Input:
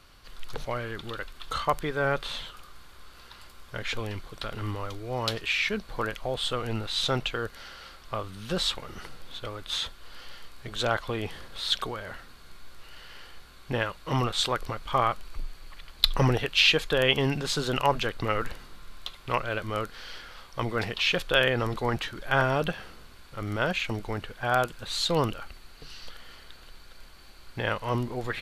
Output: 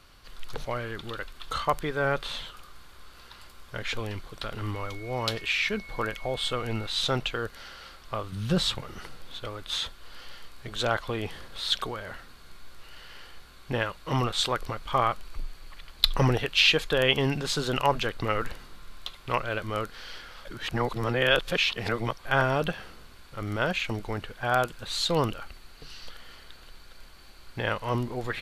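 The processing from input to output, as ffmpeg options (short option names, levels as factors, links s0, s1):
-filter_complex "[0:a]asettb=1/sr,asplit=3[s0][s1][s2];[s0]atrim=end=4.744[s3];[s1]atrim=start=4.74:end=6.87,asetpts=PTS-STARTPTS,afade=t=in:d=0.004:c=qsin,afade=t=out:st=2.126:d=0.004:c=qsin,aeval=exprs='val(0)+0.00631*sin(2*PI*2200*n/s)':c=same[s4];[s2]atrim=start=6.866[s5];[s3][s4]acrossfade=d=0.004:c1=hsin:c2=qsin[s6];[s6][s5]acrossfade=d=0.004:c1=qsin:c2=hsin,asettb=1/sr,asplit=3[s7][s8][s9];[s7]atrim=end=8.324[s10];[s8]atrim=start=8.32:end=8.82,asetpts=PTS-STARTPTS,afade=t=in:d=0.004:c=qsin,afade=t=out:st=0.496:d=0.004:c=qsin,equalizer=f=120:t=o:w=1.5:g=12.5[s11];[s9]atrim=start=8.816[s12];[s10][s11]acrossfade=d=0.004:c1=hsin:c2=qsin[s13];[s13][s12]acrossfade=d=0.004:c1=qsin:c2=hsin,asplit=3[s14][s15][s16];[s14]atrim=end=20.452[s17];[s15]atrim=start=20.448:end=22.252,asetpts=PTS-STARTPTS,areverse[s18];[s16]atrim=start=22.248[s19];[s17][s18]acrossfade=d=0.004:c1=hsin:c2=hsin[s20];[s20][s19]acrossfade=d=0.004:c1=hsin:c2=hsin"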